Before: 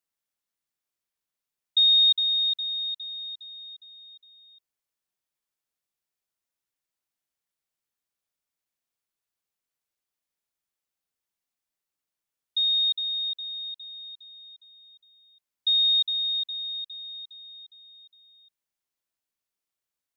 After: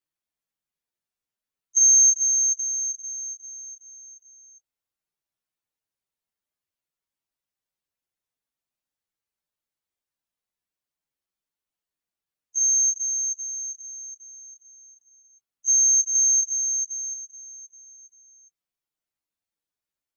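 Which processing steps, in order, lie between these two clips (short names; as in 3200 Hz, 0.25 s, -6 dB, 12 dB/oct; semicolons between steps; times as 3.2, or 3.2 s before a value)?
inharmonic rescaling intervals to 120%; 16.15–17.14 bell 3500 Hz +9 dB 2 oct; gain +4.5 dB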